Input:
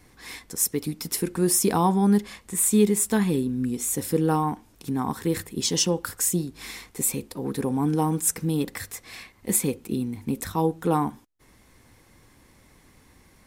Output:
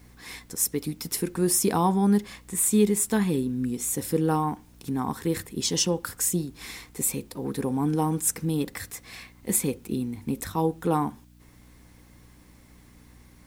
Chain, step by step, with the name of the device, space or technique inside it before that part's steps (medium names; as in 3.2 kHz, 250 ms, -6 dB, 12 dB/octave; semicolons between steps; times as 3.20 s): video cassette with head-switching buzz (mains buzz 60 Hz, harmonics 5, -53 dBFS; white noise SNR 40 dB); trim -1.5 dB